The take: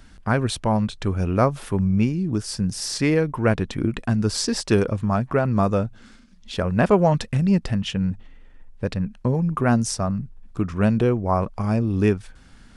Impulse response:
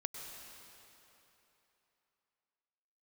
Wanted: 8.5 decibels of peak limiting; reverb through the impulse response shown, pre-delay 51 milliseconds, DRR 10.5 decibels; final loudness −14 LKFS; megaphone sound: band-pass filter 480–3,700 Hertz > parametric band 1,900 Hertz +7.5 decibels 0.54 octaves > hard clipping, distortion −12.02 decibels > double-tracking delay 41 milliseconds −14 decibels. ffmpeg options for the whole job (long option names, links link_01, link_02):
-filter_complex "[0:a]alimiter=limit=-13dB:level=0:latency=1,asplit=2[link_01][link_02];[1:a]atrim=start_sample=2205,adelay=51[link_03];[link_02][link_03]afir=irnorm=-1:irlink=0,volume=-10dB[link_04];[link_01][link_04]amix=inputs=2:normalize=0,highpass=480,lowpass=3700,equalizer=frequency=1900:width_type=o:width=0.54:gain=7.5,asoftclip=type=hard:threshold=-21.5dB,asplit=2[link_05][link_06];[link_06]adelay=41,volume=-14dB[link_07];[link_05][link_07]amix=inputs=2:normalize=0,volume=17.5dB"